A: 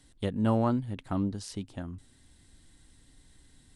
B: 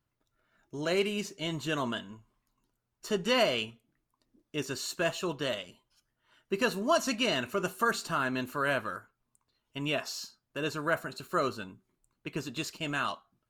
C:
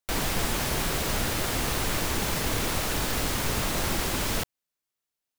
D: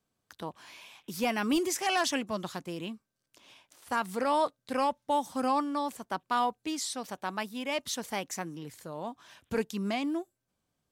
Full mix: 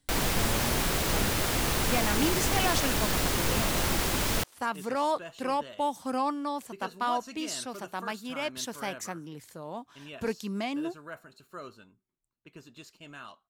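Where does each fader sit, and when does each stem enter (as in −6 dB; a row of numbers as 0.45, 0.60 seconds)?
−10.5, −13.5, 0.0, −1.0 decibels; 0.00, 0.20, 0.00, 0.70 seconds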